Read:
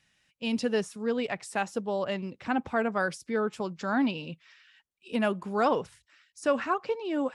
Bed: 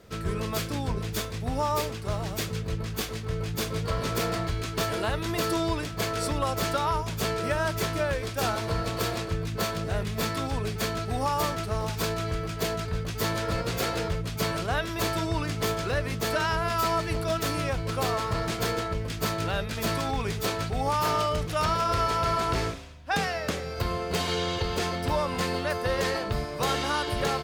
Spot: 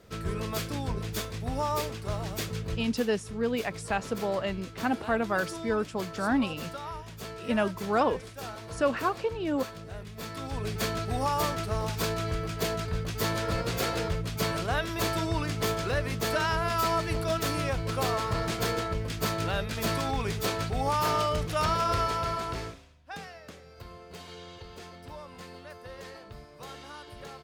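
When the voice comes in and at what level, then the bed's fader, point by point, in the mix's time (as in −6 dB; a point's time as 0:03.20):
2.35 s, 0.0 dB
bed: 0:02.77 −2.5 dB
0:03.00 −12 dB
0:10.16 −12 dB
0:10.74 −1 dB
0:21.92 −1 dB
0:23.43 −17 dB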